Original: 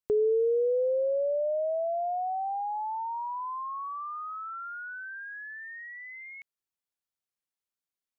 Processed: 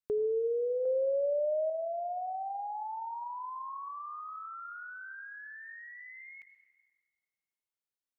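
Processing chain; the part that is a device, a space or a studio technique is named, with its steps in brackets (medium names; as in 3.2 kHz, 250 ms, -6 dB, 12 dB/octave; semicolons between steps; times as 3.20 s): 0.85–1.70 s: dynamic bell 670 Hz, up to +4 dB, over -39 dBFS, Q 0.99; compressed reverb return (on a send at -9.5 dB: reverberation RT60 1.8 s, pre-delay 76 ms + compression, threshold -31 dBFS, peak gain reduction 13 dB); on the sum: trim -5.5 dB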